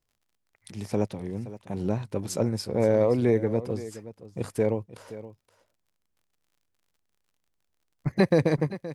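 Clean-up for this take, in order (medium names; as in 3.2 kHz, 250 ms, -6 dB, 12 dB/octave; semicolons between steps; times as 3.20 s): de-click; inverse comb 522 ms -15.5 dB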